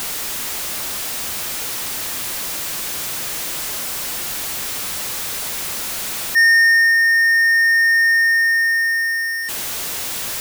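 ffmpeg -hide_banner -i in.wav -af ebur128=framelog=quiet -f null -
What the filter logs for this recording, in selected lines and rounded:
Integrated loudness:
  I:         -16.6 LUFS
  Threshold: -26.6 LUFS
Loudness range:
  LRA:         9.9 LU
  Threshold: -36.0 LUFS
  LRA low:   -22.3 LUFS
  LRA high:  -12.4 LUFS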